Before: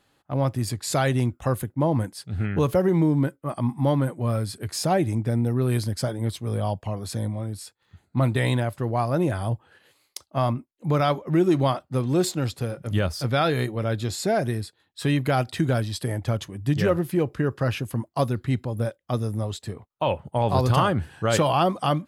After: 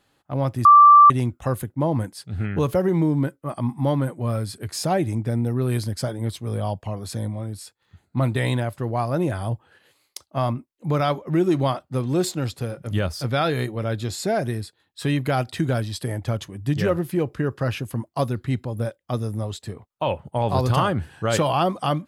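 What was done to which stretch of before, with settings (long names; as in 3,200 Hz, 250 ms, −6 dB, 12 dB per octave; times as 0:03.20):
0:00.65–0:01.10: beep over 1,170 Hz −6.5 dBFS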